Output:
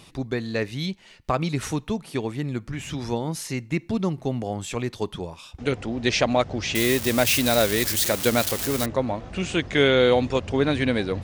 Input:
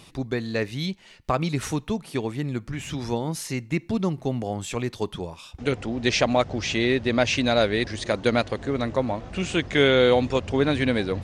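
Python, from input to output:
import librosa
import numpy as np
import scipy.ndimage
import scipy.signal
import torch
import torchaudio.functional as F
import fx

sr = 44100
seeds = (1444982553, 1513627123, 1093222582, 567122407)

y = fx.crossing_spikes(x, sr, level_db=-14.5, at=(6.75, 8.86))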